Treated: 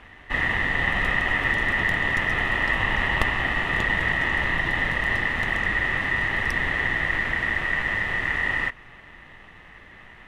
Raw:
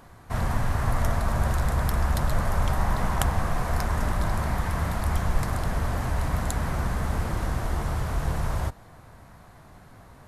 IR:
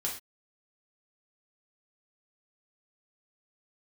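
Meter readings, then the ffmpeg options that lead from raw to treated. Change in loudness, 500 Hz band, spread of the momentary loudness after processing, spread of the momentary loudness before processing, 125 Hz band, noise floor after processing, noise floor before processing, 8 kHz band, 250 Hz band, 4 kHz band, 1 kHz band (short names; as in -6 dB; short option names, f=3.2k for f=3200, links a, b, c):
+5.0 dB, -0.5 dB, 2 LU, 3 LU, -7.5 dB, -47 dBFS, -50 dBFS, n/a, -1.0 dB, +9.0 dB, +0.5 dB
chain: -af "afftfilt=real='re*lt(hypot(re,im),1)':imag='im*lt(hypot(re,im),1)':win_size=1024:overlap=0.75,aeval=exprs='val(0)*sin(2*PI*1900*n/s)':c=same,aemphasis=mode=reproduction:type=riaa,volume=6dB"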